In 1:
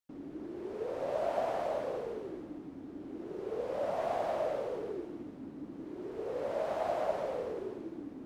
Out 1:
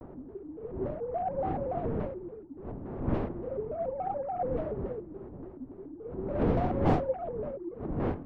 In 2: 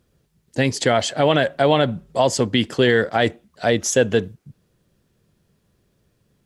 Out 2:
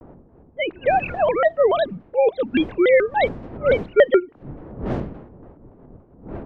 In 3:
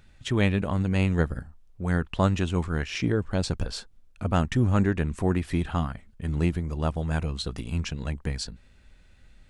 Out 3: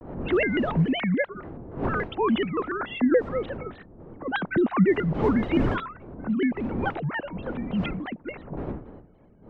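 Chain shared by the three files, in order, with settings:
sine-wave speech; wind noise 350 Hz -35 dBFS; low-pass opened by the level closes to 940 Hz, open at -16.5 dBFS; shaped vibrato square 3.5 Hz, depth 250 cents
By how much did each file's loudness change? +4.0, -0.5, +1.5 LU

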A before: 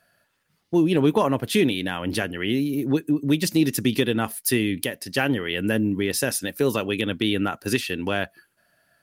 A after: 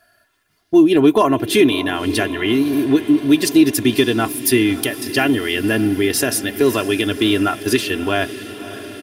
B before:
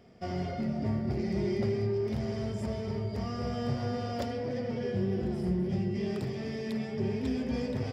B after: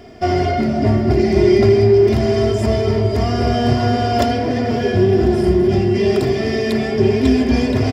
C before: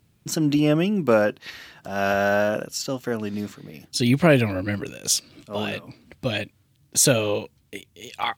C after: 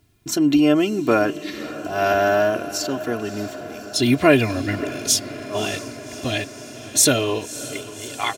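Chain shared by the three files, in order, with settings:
comb 2.9 ms, depth 73%; diffused feedback echo 0.591 s, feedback 71%, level -15 dB; normalise peaks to -2 dBFS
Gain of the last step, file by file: +4.5, +16.0, +1.0 dB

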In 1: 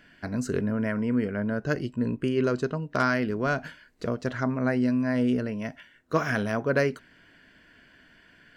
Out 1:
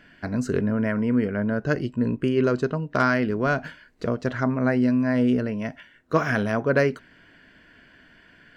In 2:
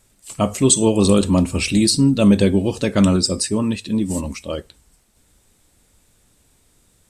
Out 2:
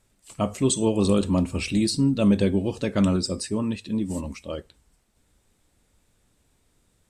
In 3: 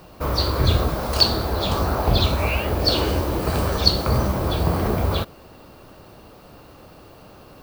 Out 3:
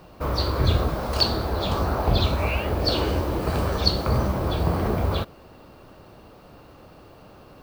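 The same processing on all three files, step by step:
high shelf 5100 Hz -7 dB; match loudness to -24 LUFS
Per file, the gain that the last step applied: +3.5, -6.0, -2.0 dB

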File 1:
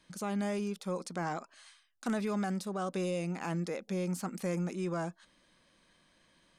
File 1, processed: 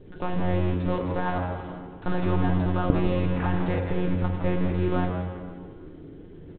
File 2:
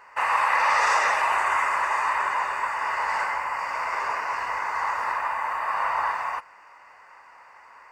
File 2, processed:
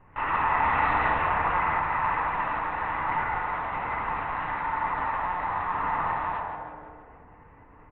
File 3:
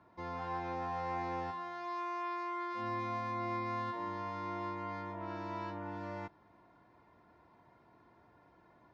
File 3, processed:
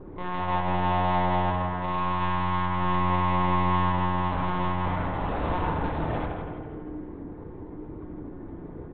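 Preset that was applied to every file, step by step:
band noise 130–440 Hz -52 dBFS; high shelf 2200 Hz -7.5 dB; in parallel at -7.5 dB: bit-crush 6-bit; on the sum: monotone LPC vocoder at 8 kHz 180 Hz; on a send: frequency-shifting echo 0.164 s, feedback 52%, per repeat -90 Hz, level -7 dB; on the sum: FDN reverb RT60 1.8 s, low-frequency decay 0.8×, high-frequency decay 0.35×, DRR 3.5 dB; match loudness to -27 LUFS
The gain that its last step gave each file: +5.5, -6.5, +9.5 dB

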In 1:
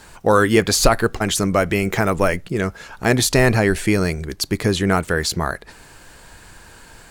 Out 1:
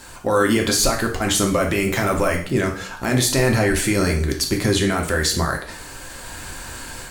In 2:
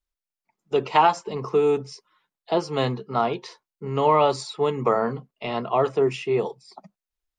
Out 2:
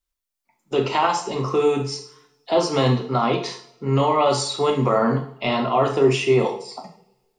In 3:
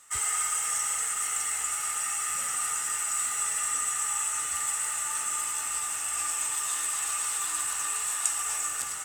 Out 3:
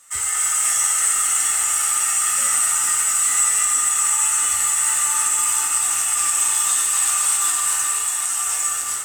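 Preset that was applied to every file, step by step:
high shelf 4300 Hz +5 dB; AGC gain up to 6.5 dB; limiter -11 dBFS; two-slope reverb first 0.49 s, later 1.6 s, from -25 dB, DRR 1 dB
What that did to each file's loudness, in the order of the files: -1.0, +2.5, +11.0 LU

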